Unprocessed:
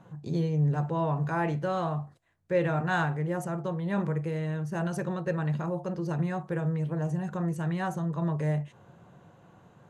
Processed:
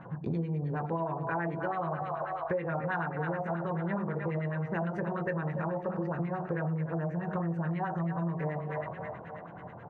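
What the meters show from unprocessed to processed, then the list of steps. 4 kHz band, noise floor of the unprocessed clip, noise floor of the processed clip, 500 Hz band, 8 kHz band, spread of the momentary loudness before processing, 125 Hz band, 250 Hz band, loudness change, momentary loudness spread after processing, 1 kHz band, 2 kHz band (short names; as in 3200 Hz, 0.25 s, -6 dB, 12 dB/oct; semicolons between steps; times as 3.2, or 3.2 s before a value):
under -10 dB, -58 dBFS, -45 dBFS, -2.0 dB, under -25 dB, 5 LU, -4.5 dB, -3.5 dB, -3.5 dB, 3 LU, 0.0 dB, -1.5 dB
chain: doubler 24 ms -6.5 dB; split-band echo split 500 Hz, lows 94 ms, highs 0.289 s, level -8.5 dB; LFO low-pass sine 9.3 Hz 750–2300 Hz; compressor 10:1, threshold -35 dBFS, peak gain reduction 19 dB; gain +5.5 dB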